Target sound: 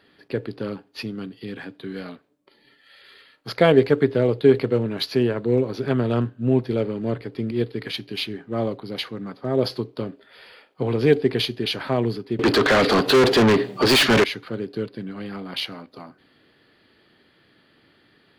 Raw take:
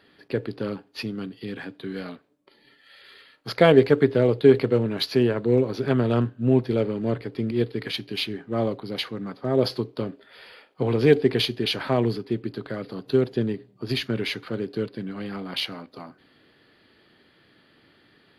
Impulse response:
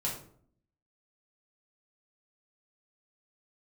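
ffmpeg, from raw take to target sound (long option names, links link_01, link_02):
-filter_complex "[0:a]asettb=1/sr,asplit=3[link_01][link_02][link_03];[link_01]atrim=end=12.394[link_04];[link_02]atrim=start=12.39:end=14.24,asetpts=PTS-STARTPTS,afade=type=in:duration=0.004:curve=qsin,afade=type=out:start_time=1.846:duration=0.004:curve=qsin,asplit=2[link_05][link_06];[link_06]highpass=frequency=720:poles=1,volume=38dB,asoftclip=type=tanh:threshold=-8dB[link_07];[link_05][link_07]amix=inputs=2:normalize=0,lowpass=frequency=4700:poles=1,volume=-6dB[link_08];[link_03]atrim=start=14.236[link_09];[link_04][link_08]acrossfade=duration=0.004:curve1=hsin:curve2=qsin[link_10];[link_10][link_09]acrossfade=duration=0.004:curve1=qsin:curve2=hsin"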